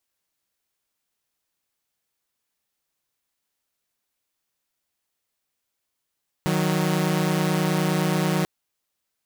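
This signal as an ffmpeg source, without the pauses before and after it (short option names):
-f lavfi -i "aevalsrc='0.0944*((2*mod(155.56*t,1)-1)+(2*mod(185*t,1)-1))':d=1.99:s=44100"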